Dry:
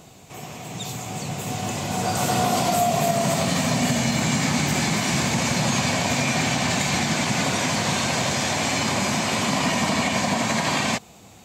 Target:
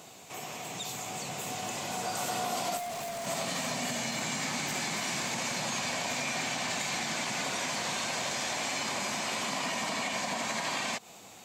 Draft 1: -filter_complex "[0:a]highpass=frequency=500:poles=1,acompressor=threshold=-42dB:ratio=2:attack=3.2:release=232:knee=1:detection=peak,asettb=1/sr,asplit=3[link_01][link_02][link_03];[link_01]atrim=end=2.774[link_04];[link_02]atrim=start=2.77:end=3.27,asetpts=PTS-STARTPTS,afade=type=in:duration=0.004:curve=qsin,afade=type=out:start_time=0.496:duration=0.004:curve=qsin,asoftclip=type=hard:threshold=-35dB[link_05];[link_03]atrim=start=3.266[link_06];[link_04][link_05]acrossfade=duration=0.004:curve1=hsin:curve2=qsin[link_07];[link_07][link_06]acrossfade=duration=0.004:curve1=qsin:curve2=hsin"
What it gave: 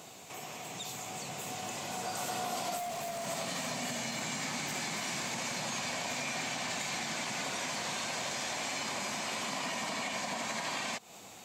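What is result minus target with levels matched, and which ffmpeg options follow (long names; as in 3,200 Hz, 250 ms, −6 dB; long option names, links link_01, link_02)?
downward compressor: peak gain reduction +3 dB
-filter_complex "[0:a]highpass=frequency=500:poles=1,acompressor=threshold=-35.5dB:ratio=2:attack=3.2:release=232:knee=1:detection=peak,asettb=1/sr,asplit=3[link_01][link_02][link_03];[link_01]atrim=end=2.774[link_04];[link_02]atrim=start=2.77:end=3.27,asetpts=PTS-STARTPTS,afade=type=in:duration=0.004:curve=qsin,afade=type=out:start_time=0.496:duration=0.004:curve=qsin,asoftclip=type=hard:threshold=-35dB[link_05];[link_03]atrim=start=3.266[link_06];[link_04][link_05]acrossfade=duration=0.004:curve1=hsin:curve2=qsin[link_07];[link_07][link_06]acrossfade=duration=0.004:curve1=qsin:curve2=hsin"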